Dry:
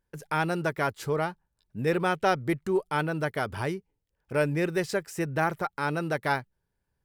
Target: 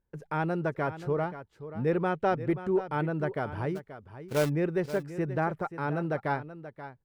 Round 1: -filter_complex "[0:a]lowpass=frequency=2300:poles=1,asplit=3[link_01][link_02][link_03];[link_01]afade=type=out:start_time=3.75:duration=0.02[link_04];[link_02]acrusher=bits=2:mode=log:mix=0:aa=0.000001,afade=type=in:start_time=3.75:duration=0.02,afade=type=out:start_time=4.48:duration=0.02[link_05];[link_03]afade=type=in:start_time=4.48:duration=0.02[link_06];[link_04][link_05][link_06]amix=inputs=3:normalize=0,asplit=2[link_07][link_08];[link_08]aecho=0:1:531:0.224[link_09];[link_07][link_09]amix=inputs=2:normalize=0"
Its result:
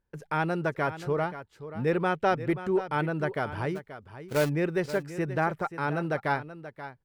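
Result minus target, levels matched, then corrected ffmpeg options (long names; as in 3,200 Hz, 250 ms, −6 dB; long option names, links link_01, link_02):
2,000 Hz band +3.0 dB
-filter_complex "[0:a]lowpass=frequency=880:poles=1,asplit=3[link_01][link_02][link_03];[link_01]afade=type=out:start_time=3.75:duration=0.02[link_04];[link_02]acrusher=bits=2:mode=log:mix=0:aa=0.000001,afade=type=in:start_time=3.75:duration=0.02,afade=type=out:start_time=4.48:duration=0.02[link_05];[link_03]afade=type=in:start_time=4.48:duration=0.02[link_06];[link_04][link_05][link_06]amix=inputs=3:normalize=0,asplit=2[link_07][link_08];[link_08]aecho=0:1:531:0.224[link_09];[link_07][link_09]amix=inputs=2:normalize=0"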